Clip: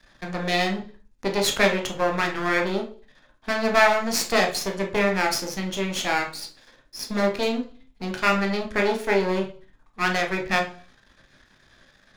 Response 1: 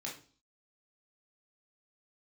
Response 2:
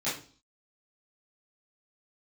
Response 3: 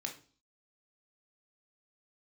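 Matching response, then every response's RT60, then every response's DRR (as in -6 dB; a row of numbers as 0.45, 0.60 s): 3; 0.40, 0.40, 0.40 s; -3.5, -13.0, 2.0 dB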